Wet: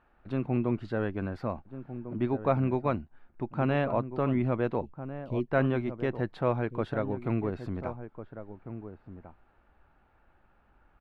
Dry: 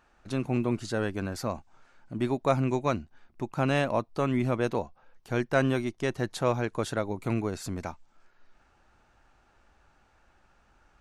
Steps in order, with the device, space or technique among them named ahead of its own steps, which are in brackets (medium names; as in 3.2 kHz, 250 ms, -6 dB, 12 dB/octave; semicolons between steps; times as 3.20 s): 4.81–5.48 s: elliptic band-stop 430–2700 Hz; shout across a valley (distance through air 440 m; echo from a far wall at 240 m, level -11 dB)